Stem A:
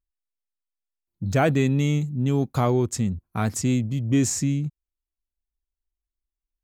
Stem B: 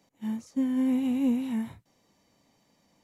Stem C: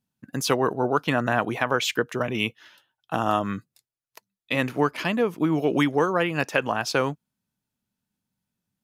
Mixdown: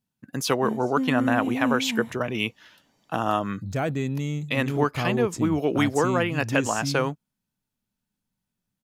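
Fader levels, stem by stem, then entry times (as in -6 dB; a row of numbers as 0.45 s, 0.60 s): -6.5 dB, 0.0 dB, -1.0 dB; 2.40 s, 0.40 s, 0.00 s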